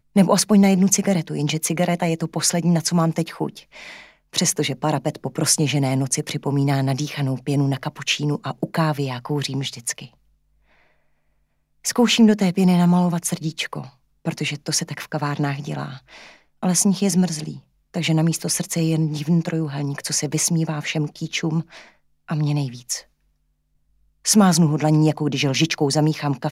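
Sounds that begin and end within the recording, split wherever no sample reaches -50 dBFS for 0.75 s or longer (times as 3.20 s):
11.84–23.06 s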